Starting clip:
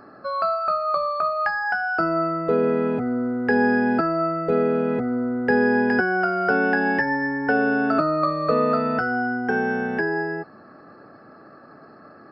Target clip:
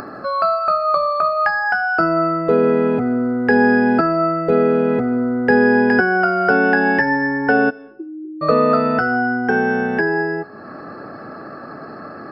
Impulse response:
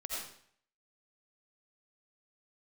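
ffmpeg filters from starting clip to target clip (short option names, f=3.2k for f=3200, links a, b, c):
-filter_complex "[0:a]asplit=3[a][b][c];[a]afade=t=out:st=7.69:d=0.02[d];[b]asuperpass=centerf=350:order=8:qfactor=6.2,afade=t=in:st=7.69:d=0.02,afade=t=out:st=8.41:d=0.02[e];[c]afade=t=in:st=8.41:d=0.02[f];[d][e][f]amix=inputs=3:normalize=0,acompressor=mode=upward:threshold=-30dB:ratio=2.5,asplit=2[g][h];[1:a]atrim=start_sample=2205,adelay=80[i];[h][i]afir=irnorm=-1:irlink=0,volume=-22.5dB[j];[g][j]amix=inputs=2:normalize=0,volume=5.5dB"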